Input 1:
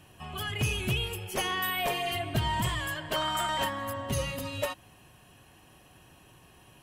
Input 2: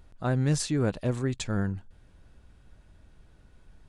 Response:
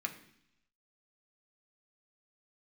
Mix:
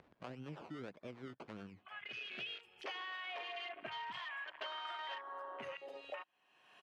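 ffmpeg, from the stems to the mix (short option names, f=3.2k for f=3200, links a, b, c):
-filter_complex "[0:a]highpass=f=1.5k:p=1,afwtdn=0.0112,adelay=1500,volume=0dB[a];[1:a]acrusher=samples=21:mix=1:aa=0.000001:lfo=1:lforange=12.6:lforate=1.7,acrossover=split=410[b][c];[b]aeval=exprs='val(0)*(1-0.5/2+0.5/2*cos(2*PI*9.7*n/s))':c=same[d];[c]aeval=exprs='val(0)*(1-0.5/2-0.5/2*cos(2*PI*9.7*n/s))':c=same[e];[d][e]amix=inputs=2:normalize=0,volume=-14.5dB,asplit=2[f][g];[g]apad=whole_len=366948[h];[a][h]sidechaincompress=threshold=-57dB:ratio=16:attack=5.3:release=591[i];[i][f]amix=inputs=2:normalize=0,acompressor=mode=upward:threshold=-41dB:ratio=2.5,highpass=210,lowpass=3k,acompressor=threshold=-43dB:ratio=4"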